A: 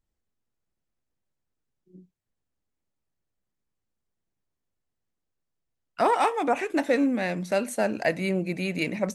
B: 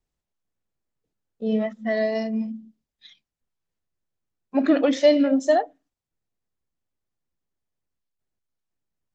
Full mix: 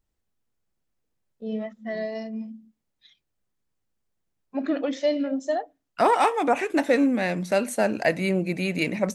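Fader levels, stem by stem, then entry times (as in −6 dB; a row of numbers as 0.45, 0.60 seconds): +2.5, −7.0 decibels; 0.00, 0.00 seconds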